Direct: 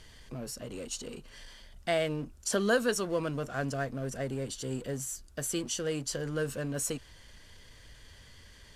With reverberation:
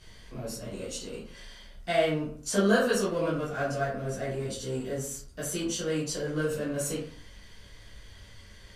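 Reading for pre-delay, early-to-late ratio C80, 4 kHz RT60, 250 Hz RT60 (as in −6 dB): 9 ms, 9.0 dB, 0.30 s, 0.55 s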